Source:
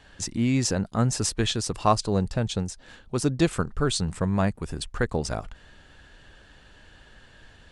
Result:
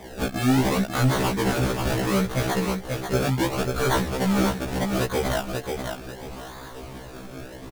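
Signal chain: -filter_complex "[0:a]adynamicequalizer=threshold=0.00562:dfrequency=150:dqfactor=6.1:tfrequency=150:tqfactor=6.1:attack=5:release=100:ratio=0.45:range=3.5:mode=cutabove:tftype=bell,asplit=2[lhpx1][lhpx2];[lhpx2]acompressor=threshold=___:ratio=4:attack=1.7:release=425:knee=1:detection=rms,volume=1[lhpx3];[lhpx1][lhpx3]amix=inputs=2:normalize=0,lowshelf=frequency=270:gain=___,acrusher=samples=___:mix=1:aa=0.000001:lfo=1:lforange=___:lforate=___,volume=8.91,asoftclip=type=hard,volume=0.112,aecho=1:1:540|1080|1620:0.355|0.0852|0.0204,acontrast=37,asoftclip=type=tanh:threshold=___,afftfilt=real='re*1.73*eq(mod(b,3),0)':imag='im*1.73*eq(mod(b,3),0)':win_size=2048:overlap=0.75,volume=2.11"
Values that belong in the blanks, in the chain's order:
0.02, -8.5, 31, 31, 0.72, 0.0708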